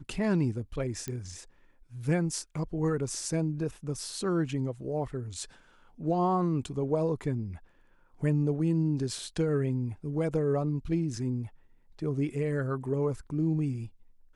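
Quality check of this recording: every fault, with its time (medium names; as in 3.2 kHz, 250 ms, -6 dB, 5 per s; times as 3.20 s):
1.08 s: pop -20 dBFS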